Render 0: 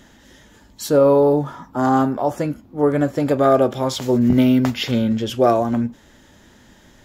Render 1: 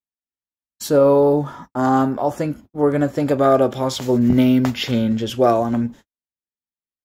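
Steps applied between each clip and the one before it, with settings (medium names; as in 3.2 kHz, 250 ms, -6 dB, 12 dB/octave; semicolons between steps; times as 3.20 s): gate -37 dBFS, range -58 dB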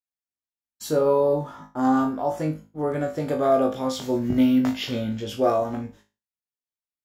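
flutter echo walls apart 3.3 m, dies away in 0.29 s; trim -8 dB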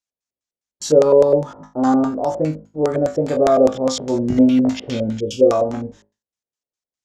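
LFO low-pass square 4.9 Hz 530–6600 Hz; time-frequency box 5.19–5.51 s, 570–2200 Hz -18 dB; trim +4 dB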